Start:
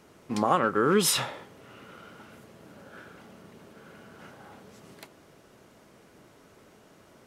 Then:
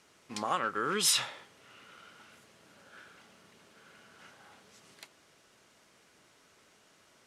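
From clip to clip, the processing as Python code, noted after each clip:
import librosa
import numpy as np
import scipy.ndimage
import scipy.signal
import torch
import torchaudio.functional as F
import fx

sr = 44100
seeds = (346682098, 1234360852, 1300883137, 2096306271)

y = scipy.signal.sosfilt(scipy.signal.butter(2, 9700.0, 'lowpass', fs=sr, output='sos'), x)
y = fx.tilt_shelf(y, sr, db=-7.5, hz=1100.0)
y = y * librosa.db_to_amplitude(-6.5)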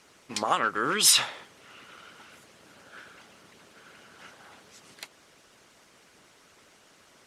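y = fx.hpss(x, sr, part='percussive', gain_db=9)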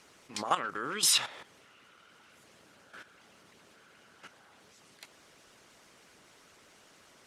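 y = fx.level_steps(x, sr, step_db=12)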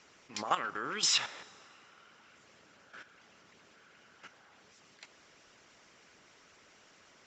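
y = scipy.signal.sosfilt(scipy.signal.cheby1(6, 3, 7500.0, 'lowpass', fs=sr, output='sos'), x)
y = fx.rev_plate(y, sr, seeds[0], rt60_s=4.5, hf_ratio=0.45, predelay_ms=0, drr_db=19.0)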